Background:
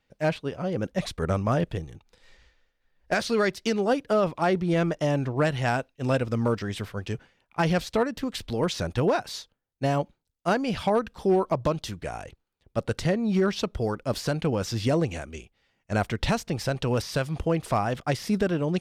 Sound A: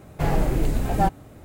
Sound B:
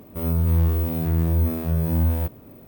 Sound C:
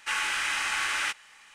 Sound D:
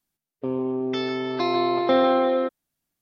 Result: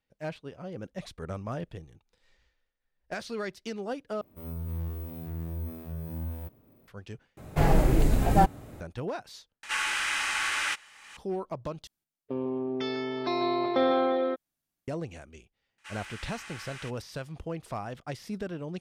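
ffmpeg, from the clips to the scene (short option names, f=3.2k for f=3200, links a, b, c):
-filter_complex "[3:a]asplit=2[a][b];[0:a]volume=-11dB[c];[a]acompressor=mode=upward:threshold=-34dB:ratio=4:attack=1.1:release=574:knee=2.83:detection=peak[d];[c]asplit=5[e][f][g][h][i];[e]atrim=end=4.214[j];[2:a]atrim=end=2.67,asetpts=PTS-STARTPTS,volume=-15dB[k];[f]atrim=start=6.876:end=7.374[l];[1:a]atrim=end=1.44[m];[g]atrim=start=8.806:end=9.634[n];[d]atrim=end=1.54,asetpts=PTS-STARTPTS,volume=-0.5dB[o];[h]atrim=start=11.166:end=11.874[p];[4:a]atrim=end=3.01,asetpts=PTS-STARTPTS,volume=-5.5dB[q];[i]atrim=start=14.876[r];[b]atrim=end=1.54,asetpts=PTS-STARTPTS,volume=-16dB,afade=t=in:d=0.004:c=hsin,afade=t=out:st=1.536:d=0.004:c=hsin,adelay=15780[s];[j][k]acrossfade=d=0.004:c1=hsin:c2=hsin[t];[t][l]acrossfade=d=0.004:c1=hsin:c2=hsin[u];[u][m]acrossfade=d=0.004:c1=hsin:c2=hsin[v];[v][n]acrossfade=d=0.004:c1=hsin:c2=hsin[w];[w][o]acrossfade=d=0.004:c1=hsin:c2=hsin[x];[x][p]acrossfade=d=0.004:c1=hsin:c2=hsin[y];[y][q]acrossfade=d=0.004:c1=hsin:c2=hsin[z];[z][r]acrossfade=d=0.004:c1=hsin:c2=hsin[aa];[aa][s]amix=inputs=2:normalize=0"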